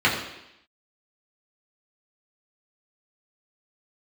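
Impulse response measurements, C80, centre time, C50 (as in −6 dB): 7.5 dB, 37 ms, 5.5 dB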